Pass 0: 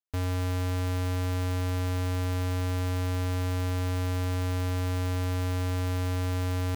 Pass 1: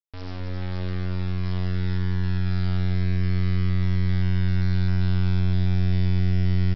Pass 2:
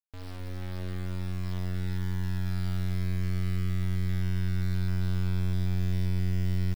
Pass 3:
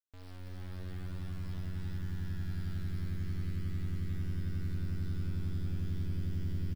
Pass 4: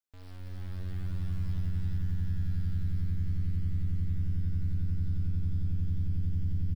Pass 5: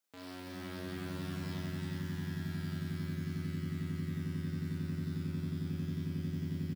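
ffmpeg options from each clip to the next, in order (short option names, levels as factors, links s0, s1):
-af "asubboost=boost=6:cutoff=130,aresample=11025,acrusher=bits=3:dc=4:mix=0:aa=0.000001,aresample=44100,aecho=1:1:264:0.562,volume=0.75"
-af "acrusher=bits=6:mix=0:aa=0.000001,volume=0.473"
-filter_complex "[0:a]asplit=2[s0][s1];[s1]aecho=0:1:175:0.316[s2];[s0][s2]amix=inputs=2:normalize=0,asoftclip=type=tanh:threshold=0.126,asplit=2[s3][s4];[s4]asplit=7[s5][s6][s7][s8][s9][s10][s11];[s5]adelay=331,afreqshift=-80,volume=0.562[s12];[s6]adelay=662,afreqshift=-160,volume=0.299[s13];[s7]adelay=993,afreqshift=-240,volume=0.158[s14];[s8]adelay=1324,afreqshift=-320,volume=0.0841[s15];[s9]adelay=1655,afreqshift=-400,volume=0.0442[s16];[s10]adelay=1986,afreqshift=-480,volume=0.0234[s17];[s11]adelay=2317,afreqshift=-560,volume=0.0124[s18];[s12][s13][s14][s15][s16][s17][s18]amix=inputs=7:normalize=0[s19];[s3][s19]amix=inputs=2:normalize=0,volume=0.355"
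-af "asubboost=boost=4.5:cutoff=220,alimiter=limit=0.0668:level=0:latency=1"
-filter_complex "[0:a]highpass=f=160:w=0.5412,highpass=f=160:w=1.3066,asplit=2[s0][s1];[s1]adelay=36,volume=0.708[s2];[s0][s2]amix=inputs=2:normalize=0,volume=2.24"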